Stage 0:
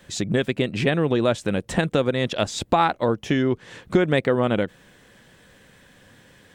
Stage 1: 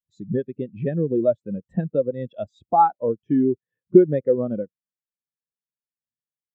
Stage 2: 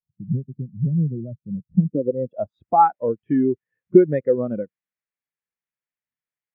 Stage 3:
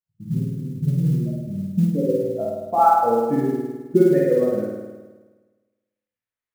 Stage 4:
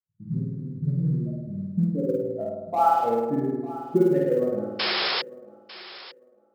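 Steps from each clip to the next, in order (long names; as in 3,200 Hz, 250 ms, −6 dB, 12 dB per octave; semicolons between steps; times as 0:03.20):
every bin expanded away from the loudest bin 2.5 to 1; level +3.5 dB
low-pass filter sweep 150 Hz → 2,100 Hz, 0:01.70–0:02.71
chorus effect 0.49 Hz, delay 18 ms, depth 3.4 ms; spring reverb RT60 1.3 s, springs 52 ms, chirp 40 ms, DRR −4 dB; noise that follows the level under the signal 32 dB
adaptive Wiener filter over 15 samples; sound drawn into the spectrogram noise, 0:04.79–0:05.22, 390–5,400 Hz −21 dBFS; feedback echo with a high-pass in the loop 899 ms, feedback 27%, high-pass 380 Hz, level −16.5 dB; level −4.5 dB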